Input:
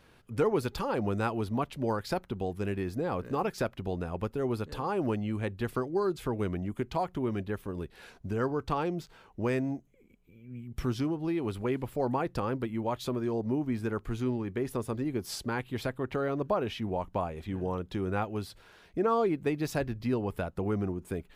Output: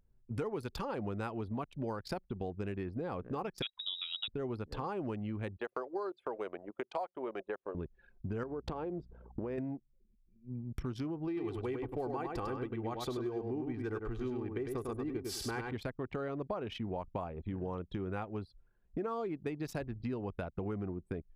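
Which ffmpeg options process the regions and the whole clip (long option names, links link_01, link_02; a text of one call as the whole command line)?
ffmpeg -i in.wav -filter_complex "[0:a]asettb=1/sr,asplit=3[link_01][link_02][link_03];[link_01]atrim=end=3.624[link_04];[link_02]atrim=start=3.62:end=4.28,asetpts=PTS-STARTPTS,afade=type=in:duration=0.004:curve=qsin,afade=type=out:start_time=0.656:duration=0.004:curve=qsin,equalizer=frequency=170:width=2.1:gain=-12.5,lowpass=frequency=3300:width_type=q:width=0.5098,lowpass=frequency=3300:width_type=q:width=0.6013,lowpass=frequency=3300:width_type=q:width=0.9,lowpass=frequency=3300:width_type=q:width=2.563,afreqshift=-3900[link_05];[link_03]atrim=start=4.276[link_06];[link_04][link_05]acrossfade=duration=0.004:curve1=hsin:curve2=qsin[link_07];[link_07][link_06]acrossfade=duration=0.004:curve1=qsin:curve2=hsin,asettb=1/sr,asplit=3[link_08][link_09][link_10];[link_08]atrim=end=5.574[link_11];[link_09]atrim=start=5.57:end=7.75,asetpts=PTS-STARTPTS,afade=type=in:duration=0.004:curve=qsin,afade=type=out:start_time=2.176:duration=0.004:curve=qsin,highpass=frequency=550:width_type=q:width=1.8,highshelf=frequency=4300:gain=-3.5[link_12];[link_10]atrim=start=7.746[link_13];[link_11][link_12]acrossfade=duration=0.004:curve1=hsin:curve2=qsin[link_14];[link_14][link_13]acrossfade=duration=0.004:curve1=qsin:curve2=hsin,asettb=1/sr,asplit=3[link_15][link_16][link_17];[link_15]atrim=end=8.434[link_18];[link_16]atrim=start=8.43:end=9.58,asetpts=PTS-STARTPTS,afade=type=in:duration=0.004:curve=qsin,afade=type=out:start_time=1.146:duration=0.004:curve=qsin,equalizer=frequency=440:width_type=o:width=2.5:gain=11,acompressor=threshold=-31dB:ratio=12:attack=3.2:release=140:knee=1:detection=peak,aeval=exprs='val(0)+0.00251*(sin(2*PI*60*n/s)+sin(2*PI*2*60*n/s)/2+sin(2*PI*3*60*n/s)/3+sin(2*PI*4*60*n/s)/4+sin(2*PI*5*60*n/s)/5)':channel_layout=same[link_19];[link_17]atrim=start=9.576[link_20];[link_18][link_19]acrossfade=duration=0.004:curve1=hsin:curve2=qsin[link_21];[link_21][link_20]acrossfade=duration=0.004:curve1=qsin:curve2=hsin,asettb=1/sr,asplit=3[link_22][link_23][link_24];[link_22]atrim=end=11.274[link_25];[link_23]atrim=start=11.27:end=15.73,asetpts=PTS-STARTPTS,afade=type=in:duration=0.004:curve=qsin,afade=type=out:start_time=4.456:duration=0.004:curve=qsin,aecho=1:1:2.6:0.46,atrim=end_sample=196686,aecho=1:1:100|200|300:0.596|0.113|0.0215,atrim=end_sample=196686[link_26];[link_24]atrim=start=15.726[link_27];[link_25][link_26]acrossfade=duration=0.004:curve1=hsin:curve2=qsin[link_28];[link_28][link_27]acrossfade=duration=0.004:curve1=qsin:curve2=hsin,anlmdn=0.398,acompressor=threshold=-41dB:ratio=4,volume=4dB" out.wav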